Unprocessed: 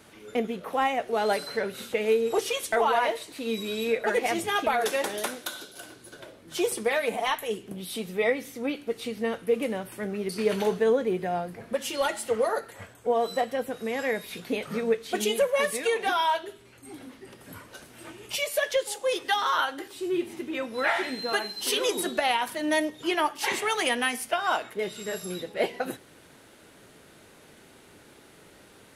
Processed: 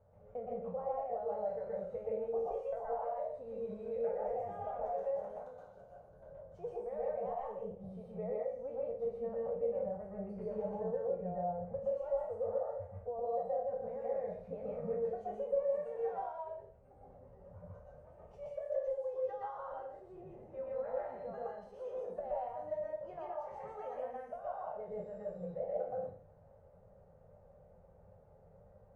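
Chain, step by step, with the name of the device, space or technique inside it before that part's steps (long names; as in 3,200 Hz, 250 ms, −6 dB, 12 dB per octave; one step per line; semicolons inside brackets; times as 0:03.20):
peak hold with a decay on every bin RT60 0.41 s
drawn EQ curve 100 Hz 0 dB, 330 Hz −28 dB, 530 Hz +6 dB, 3,400 Hz −6 dB, 6,500 Hz +12 dB
television next door (downward compressor 4 to 1, threshold −25 dBFS, peak gain reduction 10.5 dB; low-pass filter 340 Hz 12 dB per octave; convolution reverb RT60 0.30 s, pre-delay 116 ms, DRR −3.5 dB)
level −4 dB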